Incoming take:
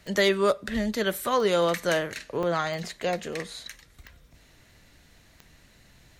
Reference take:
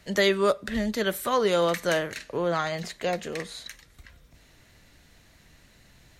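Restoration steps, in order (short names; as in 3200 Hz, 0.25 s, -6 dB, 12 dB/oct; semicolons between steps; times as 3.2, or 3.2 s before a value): clip repair -13 dBFS; de-click; interpolate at 2.43, 4.2 ms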